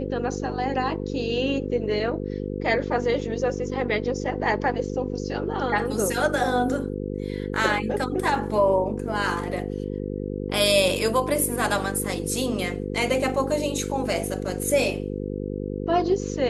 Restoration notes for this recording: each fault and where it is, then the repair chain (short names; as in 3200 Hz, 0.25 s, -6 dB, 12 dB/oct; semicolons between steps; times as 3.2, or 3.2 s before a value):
buzz 50 Hz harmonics 10 -30 dBFS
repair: de-hum 50 Hz, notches 10